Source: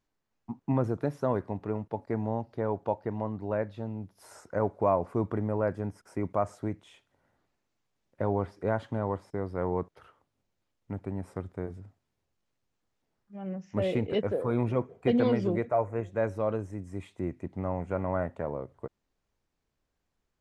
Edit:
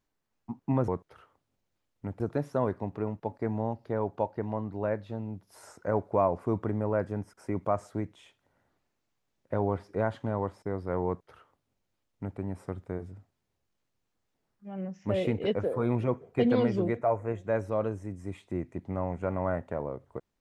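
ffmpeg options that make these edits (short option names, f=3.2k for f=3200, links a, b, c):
-filter_complex "[0:a]asplit=3[a][b][c];[a]atrim=end=0.882[d];[b]atrim=start=9.738:end=11.062[e];[c]atrim=start=0.878[f];[d][e]acrossfade=d=0.004:c1=hsin:c2=hsin[g];[g][f]acrossfade=d=0.004:c1=hsin:c2=hsin"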